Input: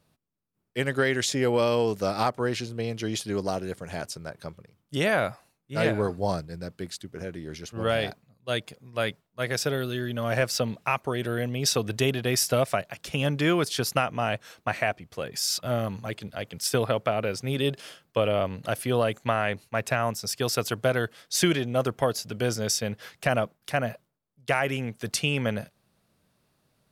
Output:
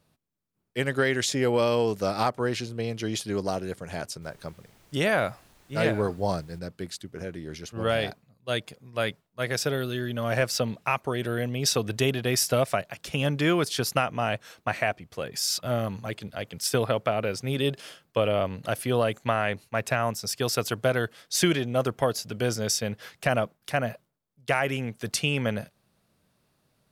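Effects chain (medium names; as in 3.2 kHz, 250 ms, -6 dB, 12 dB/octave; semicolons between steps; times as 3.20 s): 4.21–6.58 s: added noise pink -59 dBFS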